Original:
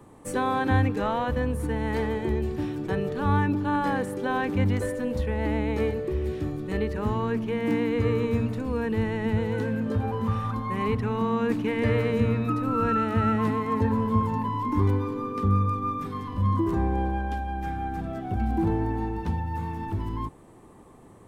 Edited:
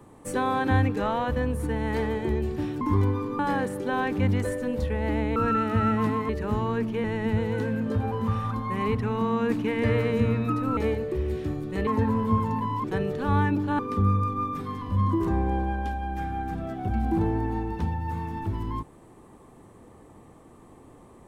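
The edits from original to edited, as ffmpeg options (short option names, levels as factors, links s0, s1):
-filter_complex "[0:a]asplit=10[s0][s1][s2][s3][s4][s5][s6][s7][s8][s9];[s0]atrim=end=2.812[s10];[s1]atrim=start=14.668:end=15.252[s11];[s2]atrim=start=3.758:end=5.732[s12];[s3]atrim=start=12.768:end=13.702[s13];[s4]atrim=start=6.828:end=7.582[s14];[s5]atrim=start=9.038:end=12.772[s15];[s6]atrim=start=5.728:end=6.832[s16];[s7]atrim=start=13.698:end=14.672[s17];[s8]atrim=start=2.808:end=3.762[s18];[s9]atrim=start=15.248[s19];[s10][s11]acrossfade=d=0.004:c1=hsin:c2=hsin[s20];[s20][s12]acrossfade=d=0.004:c1=hsin:c2=hsin[s21];[s21][s13]acrossfade=d=0.004:c1=hsin:c2=hsin[s22];[s22][s14]acrossfade=d=0.004:c1=hsin:c2=hsin[s23];[s23][s15]acrossfade=d=0.004:c1=hsin:c2=hsin[s24];[s24][s16]acrossfade=d=0.004:c1=hsin:c2=hsin[s25];[s25][s17]acrossfade=d=0.004:c1=hsin:c2=hsin[s26];[s26][s18]acrossfade=d=0.004:c1=hsin:c2=hsin[s27];[s27][s19]acrossfade=d=0.004:c1=hsin:c2=hsin"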